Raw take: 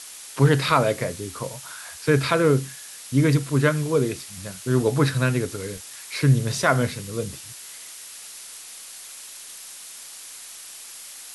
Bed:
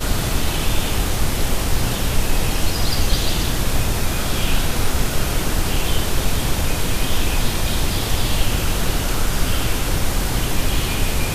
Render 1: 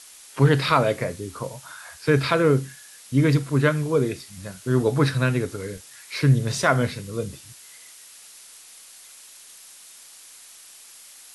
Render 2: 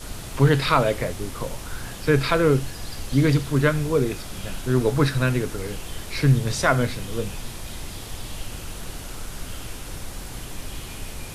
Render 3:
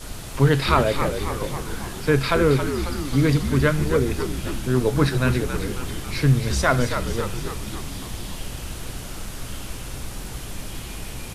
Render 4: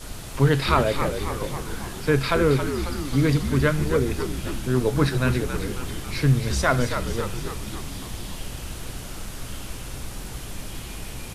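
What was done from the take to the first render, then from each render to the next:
noise print and reduce 6 dB
add bed -15 dB
frequency-shifting echo 0.272 s, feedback 61%, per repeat -69 Hz, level -8 dB
gain -1.5 dB

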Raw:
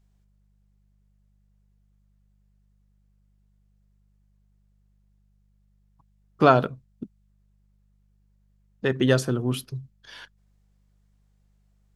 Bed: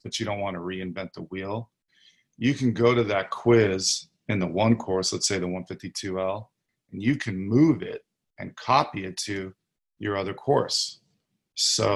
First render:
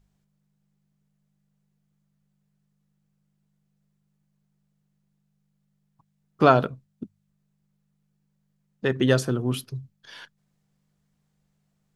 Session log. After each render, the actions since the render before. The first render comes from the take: de-hum 50 Hz, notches 2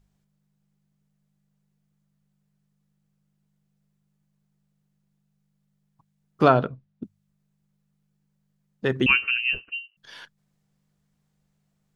6.48–7.03 air absorption 190 m; 9.06–9.97 inverted band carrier 2900 Hz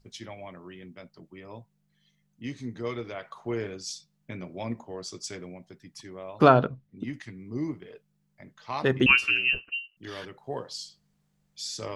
add bed -13 dB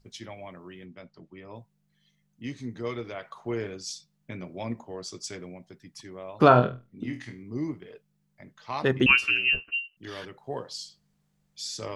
0.85–1.56 air absorption 70 m; 6.48–7.43 flutter echo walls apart 4.2 m, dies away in 0.26 s; 9.45–9.95 doubler 13 ms -6 dB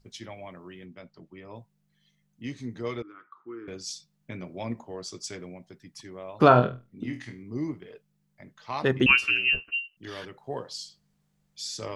3.02–3.68 double band-pass 630 Hz, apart 2 oct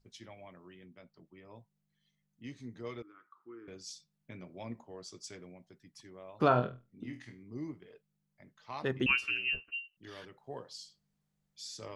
gain -9.5 dB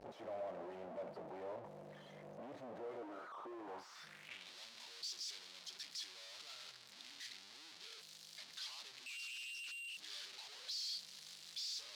infinite clipping; band-pass sweep 610 Hz -> 4300 Hz, 3.59–4.54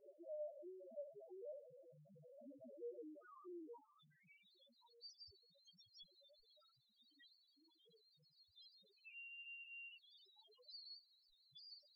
in parallel at -6.5 dB: decimation with a swept rate 20×, swing 60% 0.38 Hz; on the sum: loudest bins only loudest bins 1

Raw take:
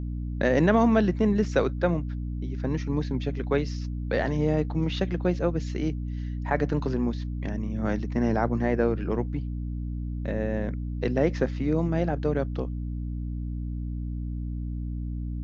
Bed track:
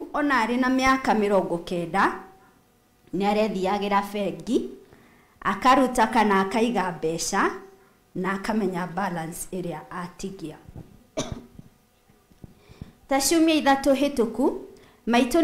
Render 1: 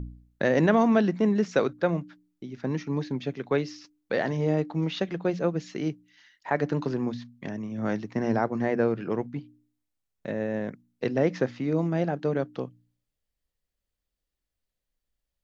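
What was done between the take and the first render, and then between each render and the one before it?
de-hum 60 Hz, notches 5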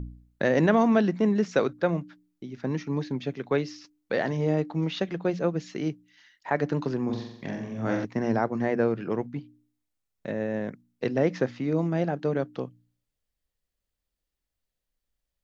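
7.05–8.05 flutter echo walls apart 7.6 m, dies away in 0.75 s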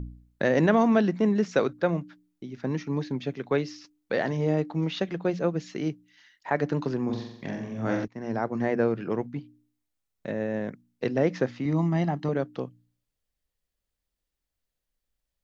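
8.08–8.59 fade in, from -16 dB; 11.65–12.29 comb 1 ms, depth 70%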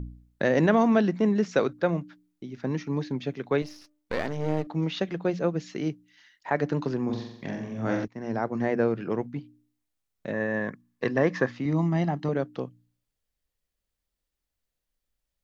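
3.62–4.67 half-wave gain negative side -12 dB; 10.33–11.52 small resonant body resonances 1100/1700 Hz, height 13 dB, ringing for 20 ms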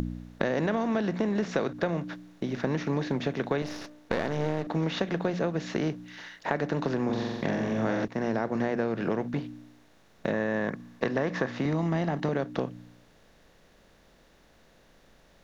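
per-bin compression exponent 0.6; compressor, threshold -24 dBFS, peak gain reduction 10 dB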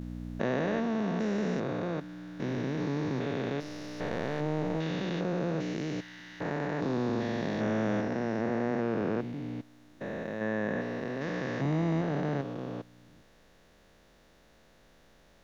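stepped spectrum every 0.4 s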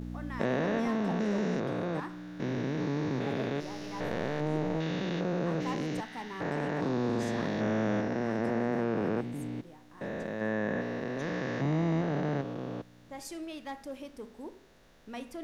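add bed track -21.5 dB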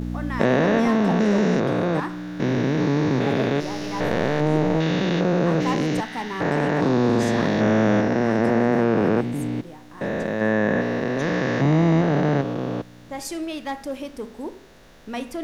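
gain +11 dB

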